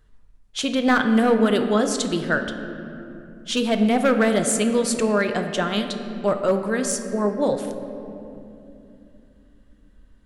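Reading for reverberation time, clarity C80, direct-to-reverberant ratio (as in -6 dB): 2.8 s, 9.0 dB, 6.0 dB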